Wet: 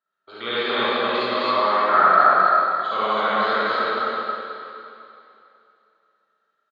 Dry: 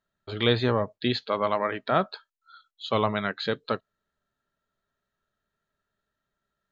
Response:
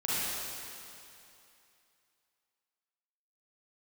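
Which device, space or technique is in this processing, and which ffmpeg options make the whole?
station announcement: -filter_complex "[0:a]asettb=1/sr,asplit=3[s0][s1][s2];[s0]atrim=end=1.734[s3];[s1]atrim=start=1.73:end=2.13,asetpts=PTS-STARTPTS,afade=t=in:d=0.004:c=qsin,afade=t=out:st=0.396:d=0.004:c=qsin,highshelf=f=2400:t=q:w=3:g=-11.5[s4];[s2]atrim=start=2.126[s5];[s3][s4]acrossfade=d=0.004:c1=hsin:c2=qsin[s6];[s6][s5]acrossfade=d=0.004:c1=qsin:c2=hsin,highpass=350,lowpass=5000,equalizer=f=1300:t=o:w=0.54:g=8.5,aecho=1:1:160.3|262.4:0.251|0.891[s7];[1:a]atrim=start_sample=2205[s8];[s7][s8]afir=irnorm=-1:irlink=0,volume=0.501"

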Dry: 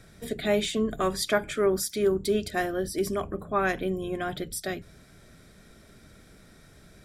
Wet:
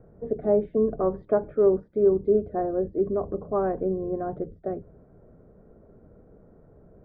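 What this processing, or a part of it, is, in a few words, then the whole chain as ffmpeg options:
under water: -af "lowpass=f=980:w=0.5412,lowpass=f=980:w=1.3066,equalizer=f=470:t=o:w=0.56:g=8"

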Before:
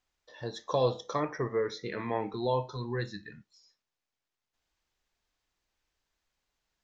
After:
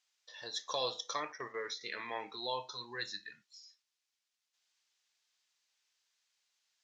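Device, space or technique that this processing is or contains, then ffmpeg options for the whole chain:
piezo pickup straight into a mixer: -filter_complex "[0:a]asettb=1/sr,asplit=3[s0][s1][s2];[s0]atrim=end=1.324[s3];[s1]atrim=start=1.32:end=1.81,asetpts=PTS-STARTPTS,afade=t=in:d=0.004:c=qsin,afade=t=out:st=0.486:d=0.004:c=qsin,agate=range=0.398:threshold=0.0158:ratio=16:detection=peak[s4];[s2]atrim=start=1.806[s5];[s3][s4]acrossfade=d=0.004:c1=hsin:c2=qsin[s6];[s6][s5]acrossfade=d=0.004:c1=qsin:c2=hsin,lowpass=5900,aderivative,volume=3.76"

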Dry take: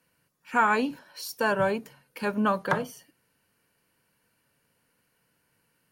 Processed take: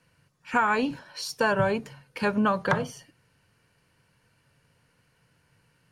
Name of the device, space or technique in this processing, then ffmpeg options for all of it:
jukebox: -af "lowpass=7700,lowshelf=f=170:t=q:w=1.5:g=6.5,acompressor=threshold=0.0562:ratio=4,volume=1.78"

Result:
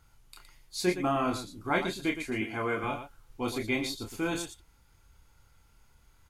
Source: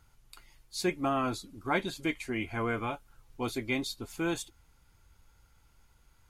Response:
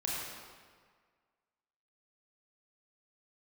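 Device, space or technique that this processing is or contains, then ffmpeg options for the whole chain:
slapback doubling: -filter_complex "[0:a]asplit=3[s0][s1][s2];[s1]adelay=28,volume=0.596[s3];[s2]adelay=116,volume=0.355[s4];[s0][s3][s4]amix=inputs=3:normalize=0,asettb=1/sr,asplit=3[s5][s6][s7];[s5]atrim=end=2.414[s8];[s6]atrim=start=2.41:end=2.84,asetpts=PTS-STARTPTS,afade=t=in:d=0.004:c=qsin,afade=t=out:st=0.426:d=0.004:c=qsin,highpass=140[s9];[s7]atrim=start=2.836[s10];[s8][s9]acrossfade=d=0.004:c1=hsin:c2=qsin[s11];[s11][s10]acrossfade=d=0.004:c1=qsin:c2=hsin"

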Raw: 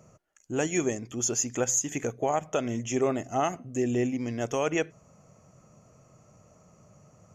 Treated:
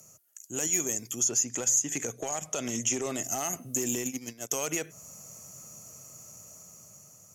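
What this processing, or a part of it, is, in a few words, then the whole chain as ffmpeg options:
FM broadcast chain: -filter_complex "[0:a]highpass=f=59:w=0.5412,highpass=f=59:w=1.3066,dynaudnorm=f=700:g=5:m=2.51,acrossover=split=150|2300[s0][s1][s2];[s0]acompressor=threshold=0.01:ratio=4[s3];[s1]acompressor=threshold=0.0891:ratio=4[s4];[s2]acompressor=threshold=0.0126:ratio=4[s5];[s3][s4][s5]amix=inputs=3:normalize=0,aemphasis=mode=production:type=75fm,alimiter=limit=0.15:level=0:latency=1:release=32,asoftclip=type=hard:threshold=0.1,lowpass=f=15000:w=0.5412,lowpass=f=15000:w=1.3066,aemphasis=mode=production:type=75fm,asettb=1/sr,asplit=3[s6][s7][s8];[s6]atrim=end=1.204[s9];[s7]atrim=start=1.2:end=3.23,asetpts=PTS-STARTPTS,afade=t=in:d=0.004:c=qsin,afade=t=out:st=2.026:d=0.004:c=qsin,lowpass=8100[s10];[s8]atrim=start=3.226[s11];[s9][s10]acrossfade=d=0.004:c1=hsin:c2=qsin[s12];[s12][s11]acrossfade=d=0.004:c1=qsin:c2=hsin,asplit=3[s13][s14][s15];[s13]afade=t=out:st=3.93:d=0.02[s16];[s14]agate=range=0.1:threshold=0.0631:ratio=16:detection=peak,afade=t=in:st=3.93:d=0.02,afade=t=out:st=4.54:d=0.02[s17];[s15]afade=t=in:st=4.54:d=0.02[s18];[s16][s17][s18]amix=inputs=3:normalize=0,volume=0.501"

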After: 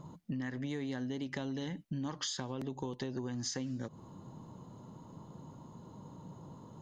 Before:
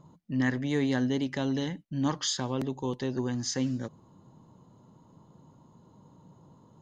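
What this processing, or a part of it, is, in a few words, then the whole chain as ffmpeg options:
serial compression, peaks first: -af "acompressor=threshold=0.0158:ratio=6,acompressor=threshold=0.00794:ratio=2.5,volume=1.88"

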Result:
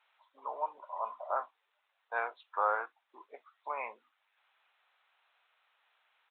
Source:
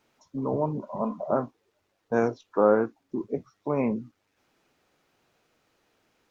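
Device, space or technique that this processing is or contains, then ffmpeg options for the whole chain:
musical greeting card: -af "aresample=8000,aresample=44100,highpass=f=830:w=0.5412,highpass=f=830:w=1.3066,equalizer=f=4000:t=o:w=0.26:g=4.5"

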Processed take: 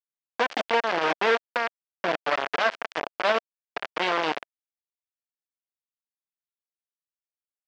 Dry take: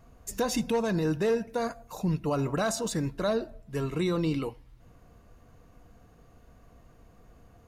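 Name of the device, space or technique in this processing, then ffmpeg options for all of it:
hand-held game console: -af "acrusher=bits=3:mix=0:aa=0.000001,highpass=480,equalizer=f=670:t=q:w=4:g=3,equalizer=f=1600:t=q:w=4:g=3,equalizer=f=3900:t=q:w=4:g=-5,lowpass=f=4100:w=0.5412,lowpass=f=4100:w=1.3066,volume=1.5"

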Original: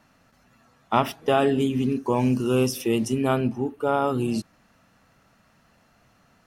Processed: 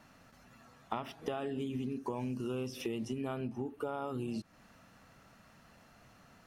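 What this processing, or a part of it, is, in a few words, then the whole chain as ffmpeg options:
serial compression, leveller first: -filter_complex "[0:a]acrossover=split=5000[s0][s1];[s1]acompressor=threshold=0.00398:ratio=4:attack=1:release=60[s2];[s0][s2]amix=inputs=2:normalize=0,acompressor=threshold=0.0631:ratio=3,acompressor=threshold=0.0158:ratio=4"

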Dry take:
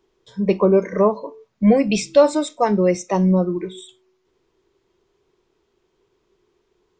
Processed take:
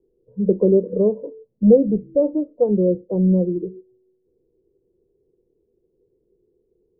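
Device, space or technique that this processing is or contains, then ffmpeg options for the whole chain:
under water: -af "lowpass=f=460:w=0.5412,lowpass=f=460:w=1.3066,equalizer=f=490:t=o:w=0.22:g=12"

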